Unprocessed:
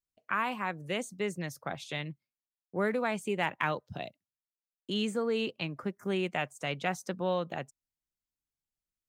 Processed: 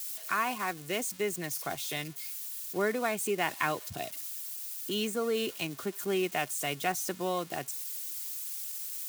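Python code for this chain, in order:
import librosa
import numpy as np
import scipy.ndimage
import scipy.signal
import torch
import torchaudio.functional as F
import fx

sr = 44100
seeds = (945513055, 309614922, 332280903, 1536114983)

y = x + 0.5 * 10.0 ** (-31.5 / 20.0) * np.diff(np.sign(x), prepend=np.sign(x[:1]))
y = y + 0.41 * np.pad(y, (int(2.8 * sr / 1000.0), 0))[:len(y)]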